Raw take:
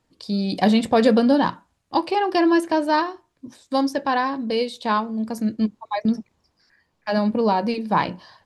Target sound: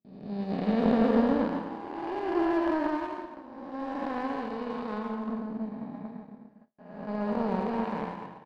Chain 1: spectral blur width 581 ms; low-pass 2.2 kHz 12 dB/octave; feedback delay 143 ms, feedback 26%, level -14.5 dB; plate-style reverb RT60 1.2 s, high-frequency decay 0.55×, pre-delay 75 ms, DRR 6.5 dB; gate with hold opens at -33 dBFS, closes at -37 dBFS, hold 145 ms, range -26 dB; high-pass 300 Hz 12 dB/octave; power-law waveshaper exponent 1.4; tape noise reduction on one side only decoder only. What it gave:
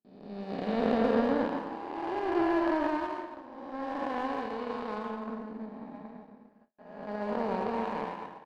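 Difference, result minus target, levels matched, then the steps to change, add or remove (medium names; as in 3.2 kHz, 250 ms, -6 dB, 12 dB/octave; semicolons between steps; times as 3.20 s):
125 Hz band -4.5 dB
change: high-pass 140 Hz 12 dB/octave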